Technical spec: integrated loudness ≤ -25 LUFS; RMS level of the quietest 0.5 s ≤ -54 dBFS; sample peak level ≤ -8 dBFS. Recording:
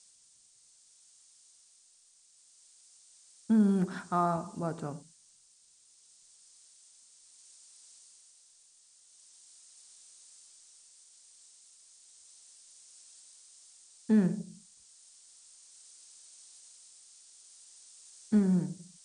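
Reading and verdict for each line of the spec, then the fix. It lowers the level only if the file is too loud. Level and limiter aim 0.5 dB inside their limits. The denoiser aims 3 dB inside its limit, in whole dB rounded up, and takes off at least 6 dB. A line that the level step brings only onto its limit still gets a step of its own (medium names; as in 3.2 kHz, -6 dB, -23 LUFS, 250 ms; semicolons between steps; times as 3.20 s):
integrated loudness -30.0 LUFS: pass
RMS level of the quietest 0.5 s -63 dBFS: pass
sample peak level -15.5 dBFS: pass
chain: none needed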